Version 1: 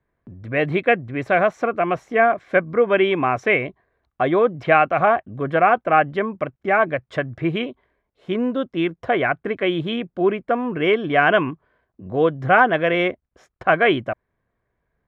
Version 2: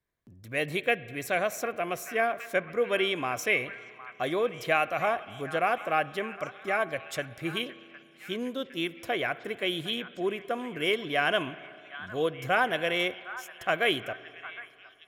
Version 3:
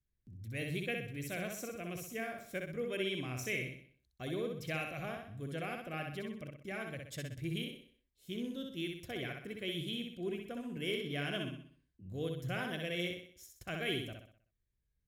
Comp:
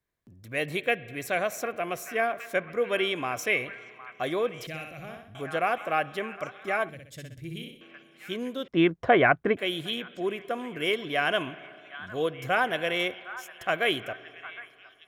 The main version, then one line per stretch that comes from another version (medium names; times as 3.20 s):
2
4.67–5.35 s: from 3
6.89–7.81 s: from 3
8.68–9.57 s: from 1